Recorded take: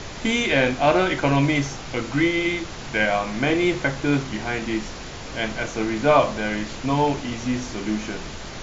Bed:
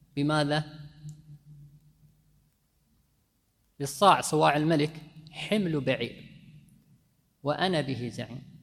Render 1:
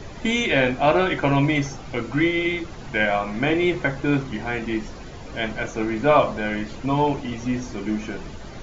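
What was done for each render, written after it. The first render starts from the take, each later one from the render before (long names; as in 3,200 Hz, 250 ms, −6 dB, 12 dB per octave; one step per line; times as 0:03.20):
broadband denoise 10 dB, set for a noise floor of −35 dBFS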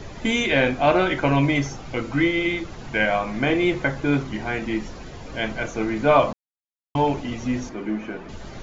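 0:06.33–0:06.95: silence
0:07.69–0:08.29: three-way crossover with the lows and the highs turned down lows −12 dB, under 170 Hz, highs −14 dB, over 2,800 Hz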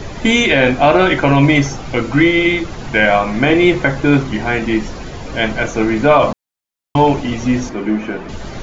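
boost into a limiter +9.5 dB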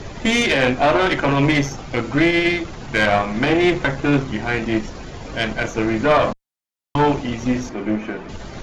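tube saturation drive 8 dB, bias 0.8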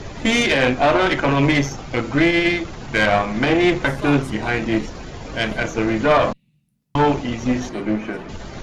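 mix in bed −10.5 dB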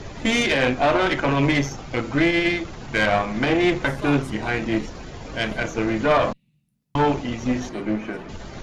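level −3 dB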